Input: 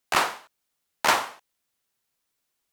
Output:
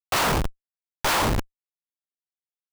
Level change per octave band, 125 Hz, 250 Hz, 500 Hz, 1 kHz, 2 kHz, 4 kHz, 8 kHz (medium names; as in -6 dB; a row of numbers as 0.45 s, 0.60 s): +20.5 dB, +11.0 dB, +4.5 dB, 0.0 dB, -0.5 dB, +2.0 dB, +3.0 dB